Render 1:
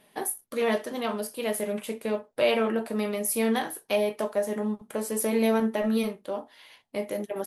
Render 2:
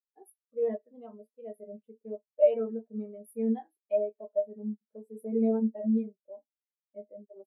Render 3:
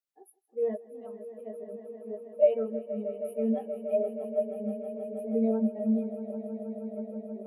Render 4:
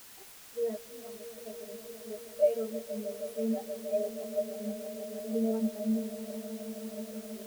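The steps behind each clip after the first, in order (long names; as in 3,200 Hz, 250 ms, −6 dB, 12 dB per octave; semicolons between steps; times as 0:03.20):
every bin expanded away from the loudest bin 2.5 to 1
echo that builds up and dies away 159 ms, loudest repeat 5, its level −15 dB
bit-depth reduction 8 bits, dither triangular; level −3.5 dB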